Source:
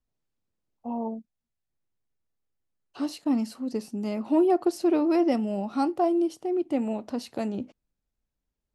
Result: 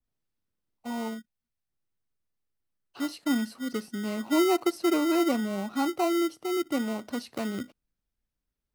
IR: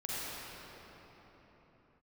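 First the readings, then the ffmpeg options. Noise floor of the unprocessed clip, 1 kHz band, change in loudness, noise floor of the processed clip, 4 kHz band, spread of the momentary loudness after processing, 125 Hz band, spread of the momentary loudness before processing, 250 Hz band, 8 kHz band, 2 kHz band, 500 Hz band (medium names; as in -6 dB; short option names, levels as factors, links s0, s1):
-84 dBFS, -1.5 dB, -1.5 dB, under -85 dBFS, +7.5 dB, 12 LU, no reading, 12 LU, -2.0 dB, +7.0 dB, +9.0 dB, -2.5 dB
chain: -filter_complex "[0:a]bandreject=f=7000:w=7,acrossover=split=590[s0][s1];[s0]acrusher=samples=26:mix=1:aa=0.000001[s2];[s2][s1]amix=inputs=2:normalize=0,adynamicequalizer=threshold=0.01:dfrequency=1800:dqfactor=0.7:tfrequency=1800:tqfactor=0.7:attack=5:release=100:ratio=0.375:range=1.5:mode=cutabove:tftype=highshelf,volume=0.841"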